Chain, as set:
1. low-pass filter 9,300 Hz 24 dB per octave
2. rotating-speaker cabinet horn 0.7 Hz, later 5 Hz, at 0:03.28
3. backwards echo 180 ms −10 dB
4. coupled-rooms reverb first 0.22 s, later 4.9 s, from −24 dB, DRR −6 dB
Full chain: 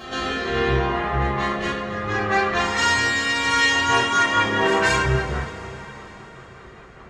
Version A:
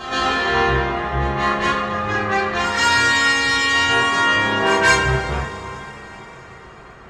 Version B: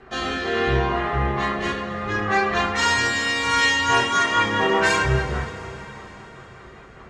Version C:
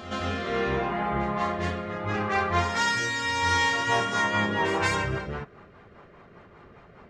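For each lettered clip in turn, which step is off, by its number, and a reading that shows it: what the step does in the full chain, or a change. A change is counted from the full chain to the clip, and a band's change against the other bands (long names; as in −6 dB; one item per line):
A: 2, 125 Hz band −2.0 dB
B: 3, change in momentary loudness spread +2 LU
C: 4, change in momentary loudness spread −4 LU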